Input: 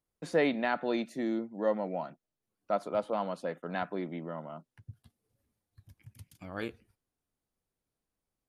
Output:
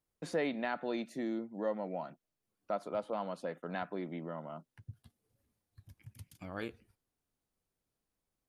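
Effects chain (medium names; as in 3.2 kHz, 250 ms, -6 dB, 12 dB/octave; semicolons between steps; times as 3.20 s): compression 1.5:1, threshold -41 dBFS, peak gain reduction 7 dB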